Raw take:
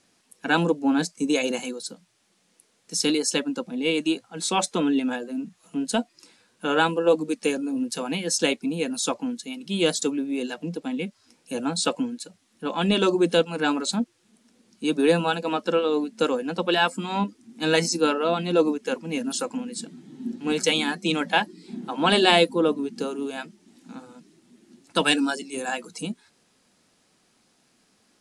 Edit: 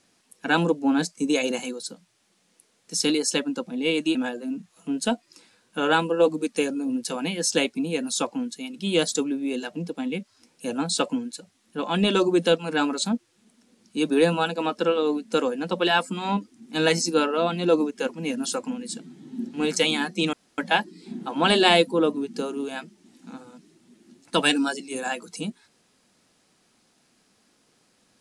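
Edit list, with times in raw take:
0:04.15–0:05.02: remove
0:21.20: splice in room tone 0.25 s

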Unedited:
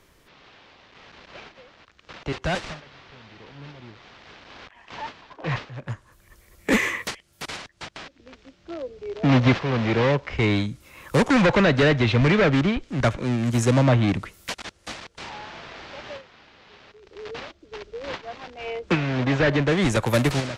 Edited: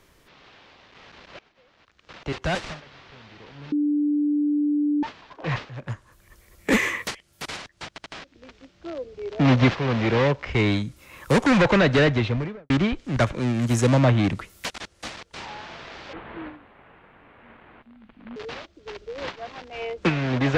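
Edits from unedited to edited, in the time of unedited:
0:01.39–0:02.38: fade in, from −21 dB
0:03.72–0:05.03: beep over 294 Hz −19 dBFS
0:07.90: stutter 0.08 s, 3 plays
0:11.85–0:12.54: fade out and dull
0:15.97–0:17.22: play speed 56%

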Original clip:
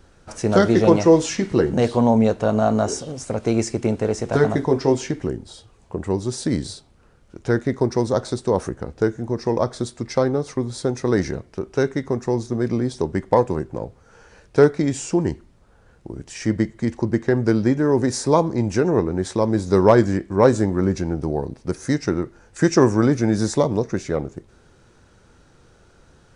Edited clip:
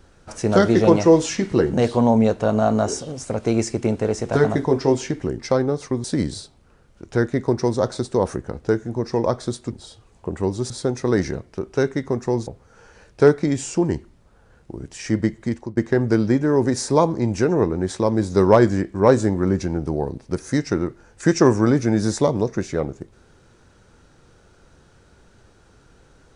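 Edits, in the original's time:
0:05.39–0:06.37: swap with 0:10.05–0:10.70
0:12.47–0:13.83: remove
0:16.80–0:17.13: fade out, to −18 dB

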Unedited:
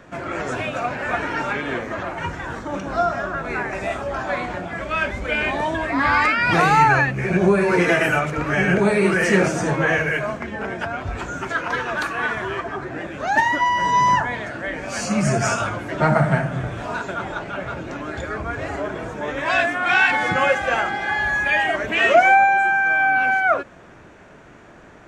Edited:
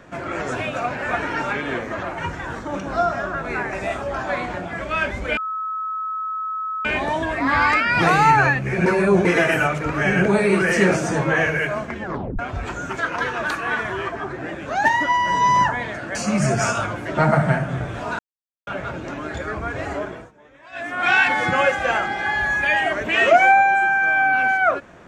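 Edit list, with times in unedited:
0:05.37: insert tone 1,290 Hz −23.5 dBFS 1.48 s
0:07.38–0:07.77: reverse
0:10.55: tape stop 0.36 s
0:14.67–0:14.98: remove
0:17.02–0:17.50: silence
0:18.81–0:19.89: duck −23.5 dB, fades 0.34 s

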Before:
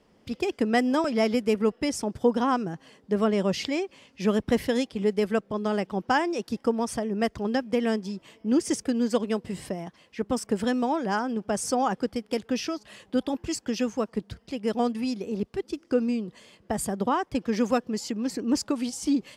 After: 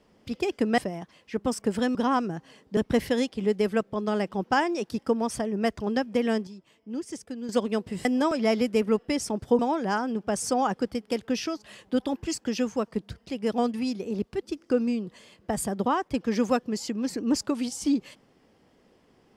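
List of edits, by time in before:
0:00.78–0:02.32: swap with 0:09.63–0:10.80
0:03.14–0:04.35: remove
0:08.05–0:09.07: clip gain −10.5 dB

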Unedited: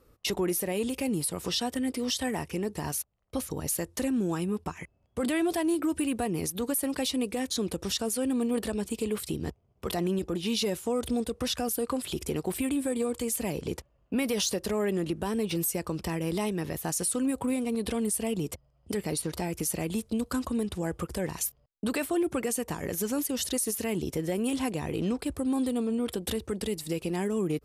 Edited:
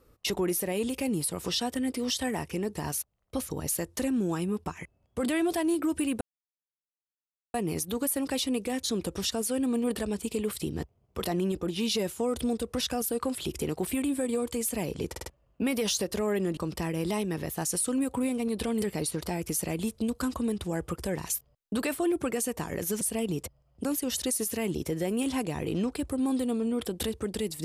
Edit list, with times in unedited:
0:06.21: splice in silence 1.33 s
0:13.78: stutter 0.05 s, 4 plays
0:15.09–0:15.84: remove
0:18.09–0:18.93: move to 0:23.12

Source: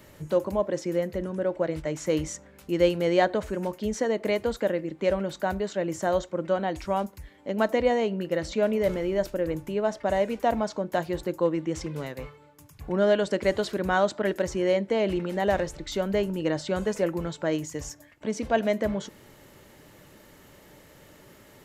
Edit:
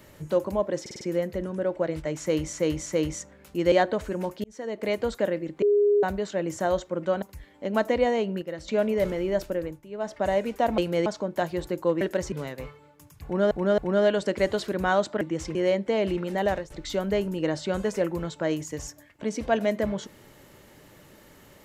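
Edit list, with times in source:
0:00.81: stutter 0.05 s, 5 plays
0:02.00–0:02.33: repeat, 3 plays
0:02.86–0:03.14: move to 0:10.62
0:03.86–0:04.39: fade in
0:05.04–0:05.45: beep over 411 Hz −17 dBFS
0:06.64–0:07.06: remove
0:08.26–0:08.52: clip gain −7.5 dB
0:09.36–0:10.02: duck −14 dB, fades 0.29 s
0:11.57–0:11.91: swap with 0:14.26–0:14.57
0:12.83–0:13.10: repeat, 3 plays
0:15.39–0:15.72: fade out equal-power, to −15.5 dB

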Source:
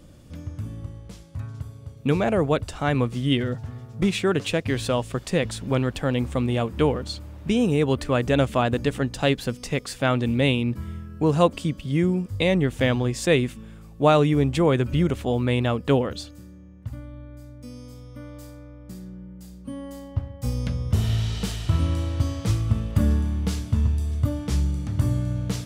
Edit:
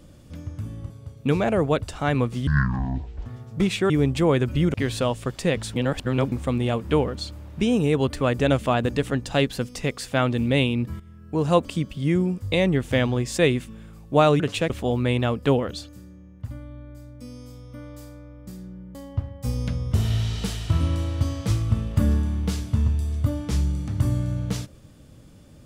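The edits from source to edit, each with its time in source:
0:00.90–0:01.70: remove
0:03.27–0:03.68: play speed 52%
0:04.32–0:04.62: swap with 0:14.28–0:15.12
0:05.64–0:06.20: reverse
0:10.88–0:11.48: fade in, from −16 dB
0:19.37–0:19.94: remove

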